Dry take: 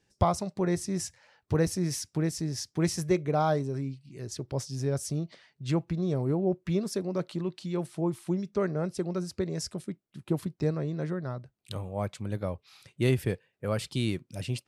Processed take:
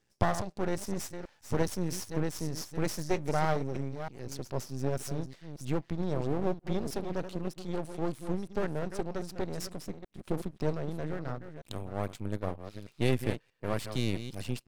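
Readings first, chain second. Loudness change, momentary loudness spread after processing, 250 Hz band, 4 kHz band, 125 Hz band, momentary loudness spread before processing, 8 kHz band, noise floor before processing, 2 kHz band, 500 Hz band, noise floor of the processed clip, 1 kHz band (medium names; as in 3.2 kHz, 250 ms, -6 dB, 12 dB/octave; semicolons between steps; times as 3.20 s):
-4.0 dB, 9 LU, -4.5 dB, -3.0 dB, -4.5 dB, 11 LU, -4.5 dB, -77 dBFS, 0.0 dB, -3.0 dB, -68 dBFS, -2.0 dB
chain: chunks repeated in reverse 314 ms, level -9.5 dB; half-wave rectifier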